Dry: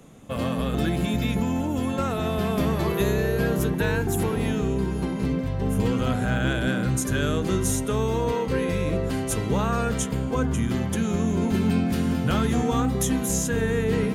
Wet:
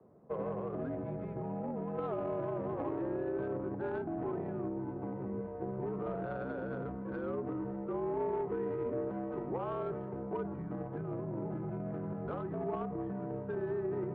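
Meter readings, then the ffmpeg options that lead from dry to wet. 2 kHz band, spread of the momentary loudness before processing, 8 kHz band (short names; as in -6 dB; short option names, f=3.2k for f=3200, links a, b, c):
-20.0 dB, 3 LU, under -40 dB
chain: -filter_complex "[0:a]aemphasis=mode=reproduction:type=75kf,highpass=f=190:t=q:w=0.5412,highpass=f=190:t=q:w=1.307,lowpass=f=3.5k:t=q:w=0.5176,lowpass=f=3.5k:t=q:w=0.7071,lowpass=f=3.5k:t=q:w=1.932,afreqshift=-62,alimiter=limit=-21dB:level=0:latency=1:release=40,acrossover=split=380 2100:gain=0.224 1 0.0891[a][b][c];[a][b][c]amix=inputs=3:normalize=0,adynamicsmooth=sensitivity=0.5:basefreq=670"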